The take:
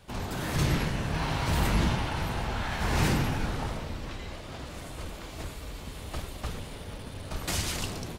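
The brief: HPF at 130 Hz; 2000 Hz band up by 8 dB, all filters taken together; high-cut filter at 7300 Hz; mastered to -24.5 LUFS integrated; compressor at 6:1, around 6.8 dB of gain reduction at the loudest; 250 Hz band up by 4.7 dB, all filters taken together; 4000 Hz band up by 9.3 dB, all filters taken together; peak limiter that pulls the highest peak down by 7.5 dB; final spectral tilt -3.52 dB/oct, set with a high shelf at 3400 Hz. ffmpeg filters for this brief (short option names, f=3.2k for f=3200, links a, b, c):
-af "highpass=130,lowpass=7.3k,equalizer=f=250:t=o:g=7,equalizer=f=2k:t=o:g=6.5,highshelf=f=3.4k:g=6.5,equalizer=f=4k:t=o:g=5.5,acompressor=threshold=-26dB:ratio=6,volume=8.5dB,alimiter=limit=-15dB:level=0:latency=1"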